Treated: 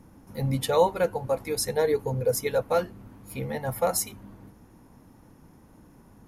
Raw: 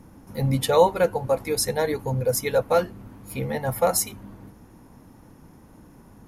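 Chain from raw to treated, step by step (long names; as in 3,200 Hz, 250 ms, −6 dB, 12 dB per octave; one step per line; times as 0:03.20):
0:01.76–0:02.47: parametric band 440 Hz +9 dB 0.25 octaves
level −4 dB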